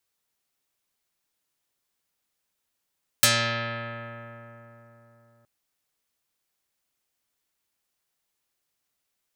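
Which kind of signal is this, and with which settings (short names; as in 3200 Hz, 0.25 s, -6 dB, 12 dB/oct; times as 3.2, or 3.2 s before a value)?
plucked string A#2, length 2.22 s, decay 3.96 s, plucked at 0.31, dark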